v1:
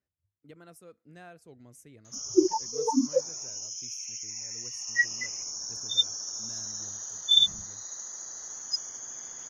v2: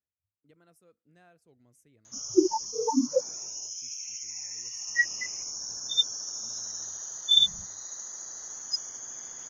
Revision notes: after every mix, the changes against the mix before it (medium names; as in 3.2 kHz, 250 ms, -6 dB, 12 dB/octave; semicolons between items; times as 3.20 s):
speech -10.5 dB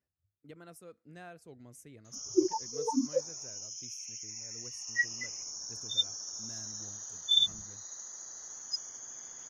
speech +10.5 dB; background -5.0 dB